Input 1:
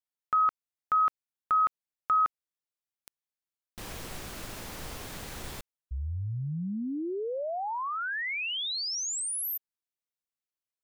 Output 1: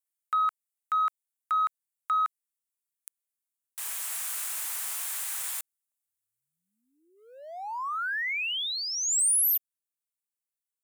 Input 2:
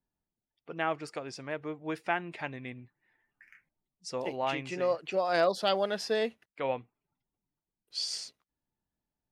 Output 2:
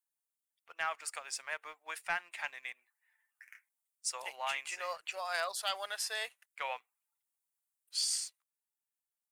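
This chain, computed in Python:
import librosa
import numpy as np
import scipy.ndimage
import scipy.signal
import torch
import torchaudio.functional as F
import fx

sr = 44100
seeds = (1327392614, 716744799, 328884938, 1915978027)

p1 = scipy.signal.sosfilt(scipy.signal.bessel(4, 1300.0, 'highpass', norm='mag', fs=sr, output='sos'), x)
p2 = fx.high_shelf_res(p1, sr, hz=6600.0, db=9.0, q=1.5)
p3 = fx.rider(p2, sr, range_db=5, speed_s=0.5)
p4 = p2 + (p3 * 10.0 ** (1.0 / 20.0))
p5 = fx.leveller(p4, sr, passes=1)
y = p5 * 10.0 ** (-8.5 / 20.0)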